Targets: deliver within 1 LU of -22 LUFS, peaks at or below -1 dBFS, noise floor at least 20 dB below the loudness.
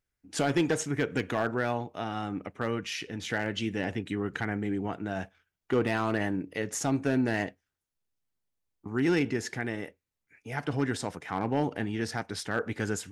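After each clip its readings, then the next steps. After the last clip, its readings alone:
clipped 0.3%; flat tops at -18.0 dBFS; loudness -31.0 LUFS; peak -18.0 dBFS; loudness target -22.0 LUFS
-> clip repair -18 dBFS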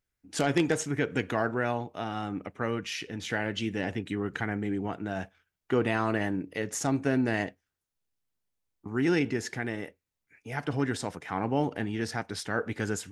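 clipped 0.0%; loudness -31.0 LUFS; peak -10.5 dBFS; loudness target -22.0 LUFS
-> gain +9 dB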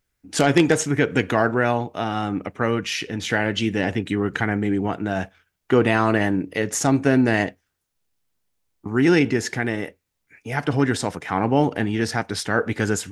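loudness -22.0 LUFS; peak -1.5 dBFS; noise floor -77 dBFS

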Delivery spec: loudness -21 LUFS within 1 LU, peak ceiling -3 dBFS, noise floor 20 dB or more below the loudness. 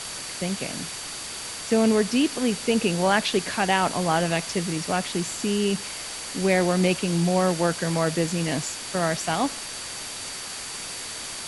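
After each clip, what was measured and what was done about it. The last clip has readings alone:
steady tone 4600 Hz; tone level -41 dBFS; noise floor -35 dBFS; noise floor target -45 dBFS; loudness -25.0 LUFS; peak -6.5 dBFS; loudness target -21.0 LUFS
-> notch 4600 Hz, Q 30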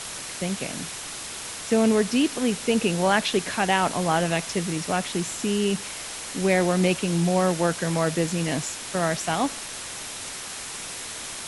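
steady tone none; noise floor -36 dBFS; noise floor target -45 dBFS
-> denoiser 9 dB, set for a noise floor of -36 dBFS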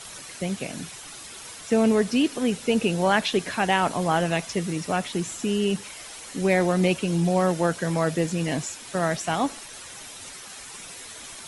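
noise floor -41 dBFS; noise floor target -45 dBFS
-> denoiser 6 dB, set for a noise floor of -41 dBFS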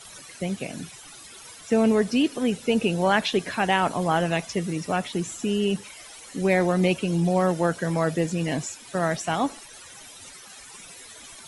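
noise floor -45 dBFS; loudness -24.5 LUFS; peak -7.0 dBFS; loudness target -21.0 LUFS
-> gain +3.5 dB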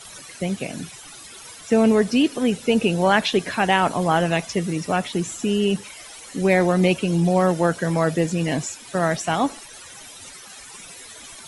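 loudness -21.0 LUFS; peak -3.5 dBFS; noise floor -42 dBFS

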